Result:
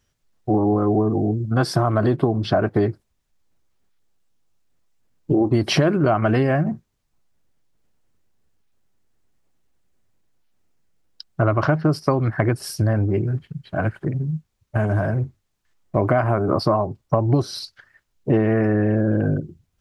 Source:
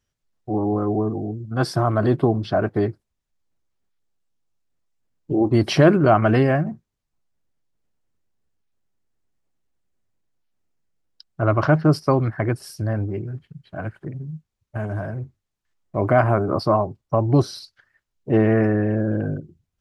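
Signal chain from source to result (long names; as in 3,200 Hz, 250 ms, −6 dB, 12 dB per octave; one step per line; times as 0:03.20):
downward compressor 6 to 1, threshold −23 dBFS, peak gain reduction 13.5 dB
level +8 dB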